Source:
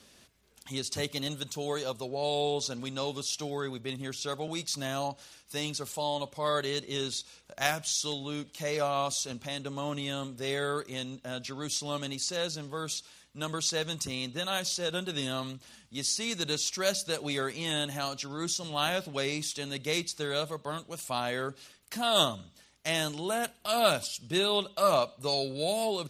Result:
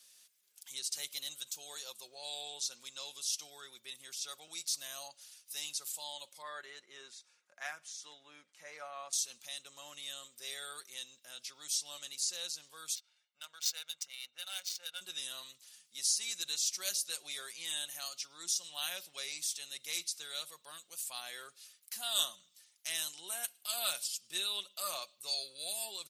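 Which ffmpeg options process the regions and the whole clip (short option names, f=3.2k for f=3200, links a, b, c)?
-filter_complex "[0:a]asettb=1/sr,asplit=3[a][b][c];[a]atrim=end=6.424[d];[b]atrim=start=6.42:end=9.13,asetpts=PTS-STARTPTS,afade=t=in:d=0.004:c=qsin,afade=t=out:st=2.706:d=0.004:c=qsin,highpass=160,lowpass=7.4k,highshelf=f=2.5k:t=q:w=1.5:g=-11.5[e];[c]atrim=start=9.126[f];[d][e]acrossfade=d=0.004:c1=hsin:c2=qsin[g];[g][f]acrossfade=d=0.004:c1=qsin:c2=hsin,asettb=1/sr,asplit=3[h][i][j];[h]atrim=end=12.954[k];[i]atrim=start=12.95:end=15.01,asetpts=PTS-STARTPTS,afade=t=in:d=0.004:c=qsin,afade=t=out:st=2.056:d=0.004:c=qsin,highpass=f=1.3k:p=1,aecho=1:1:1.4:0.57,atrim=end_sample=90846,adynamicsmooth=sensitivity=4.5:basefreq=1.8k[l];[j]atrim=start=15.006[m];[k][l]acrossfade=d=0.004:c1=hsin:c2=qsin[n];[n][m]acrossfade=d=0.004:c1=qsin:c2=hsin,aderivative,aecho=1:1:5.6:0.36"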